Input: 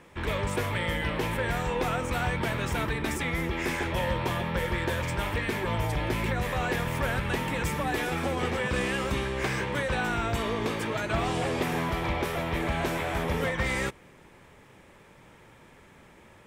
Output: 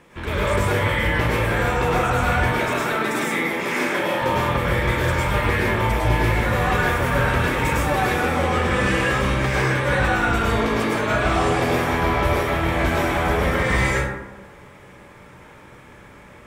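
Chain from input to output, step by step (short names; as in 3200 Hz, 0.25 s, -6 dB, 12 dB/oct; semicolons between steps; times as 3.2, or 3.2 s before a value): 2.37–4.22 HPF 180 Hz 24 dB/oct; plate-style reverb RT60 1.1 s, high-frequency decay 0.4×, pre-delay 90 ms, DRR -7 dB; gain +1.5 dB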